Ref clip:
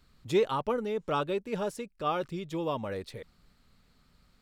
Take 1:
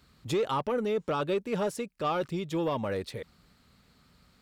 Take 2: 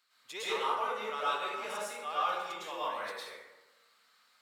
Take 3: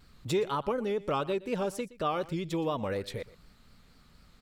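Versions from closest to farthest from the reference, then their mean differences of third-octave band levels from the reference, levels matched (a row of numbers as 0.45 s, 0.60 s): 1, 3, 2; 2.5 dB, 3.5 dB, 12.5 dB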